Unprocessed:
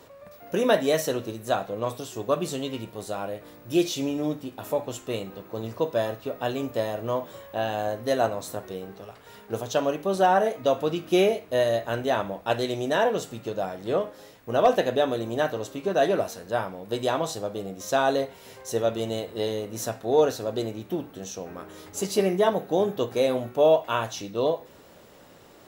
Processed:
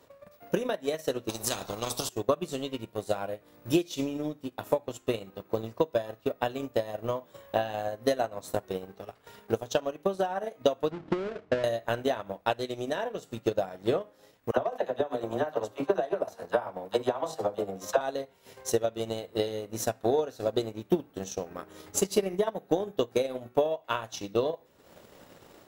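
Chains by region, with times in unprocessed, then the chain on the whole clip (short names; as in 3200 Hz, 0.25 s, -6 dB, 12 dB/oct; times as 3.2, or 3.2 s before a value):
1.29–2.09 EQ curve 650 Hz 0 dB, 1700 Hz -21 dB, 3000 Hz -16 dB, 5200 Hz -6 dB, 13000 Hz -13 dB + spectral compressor 4:1
10.91–11.64 half-waves squared off + compressor 12:1, threshold -26 dBFS + tape spacing loss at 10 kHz 31 dB
14.51–18.01 bell 850 Hz +10.5 dB 1.8 oct + compressor 4:1, threshold -19 dBFS + dispersion lows, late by 65 ms, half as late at 470 Hz
whole clip: compressor 3:1, threshold -26 dBFS; transient shaper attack +11 dB, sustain -10 dB; AGC gain up to 6.5 dB; gain -8.5 dB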